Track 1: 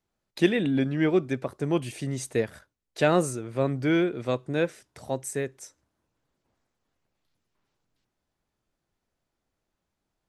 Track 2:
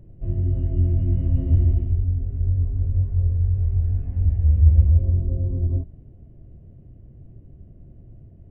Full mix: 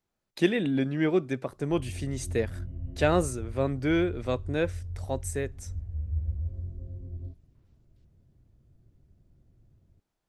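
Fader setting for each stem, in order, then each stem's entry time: −2.0, −16.5 decibels; 0.00, 1.50 seconds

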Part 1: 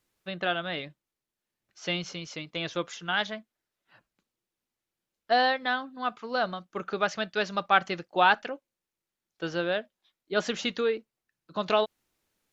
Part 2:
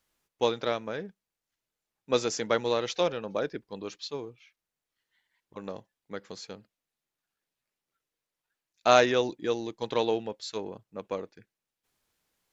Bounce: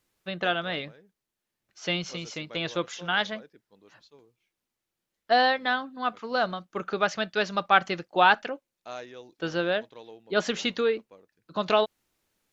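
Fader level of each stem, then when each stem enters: +2.0, −19.5 decibels; 0.00, 0.00 seconds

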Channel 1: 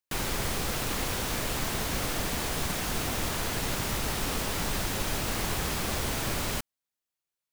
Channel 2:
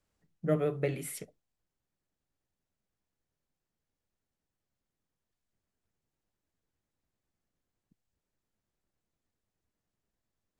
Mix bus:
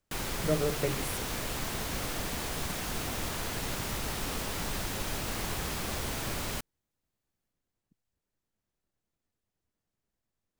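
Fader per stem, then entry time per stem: −4.0, −0.5 decibels; 0.00, 0.00 seconds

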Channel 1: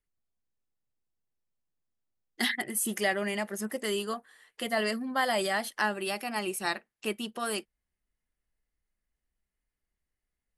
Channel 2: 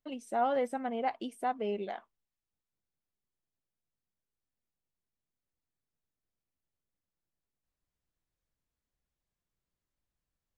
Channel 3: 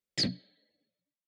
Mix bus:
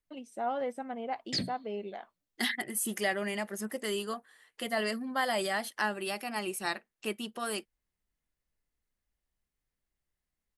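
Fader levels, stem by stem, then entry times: −2.5, −3.5, −3.0 decibels; 0.00, 0.05, 1.15 seconds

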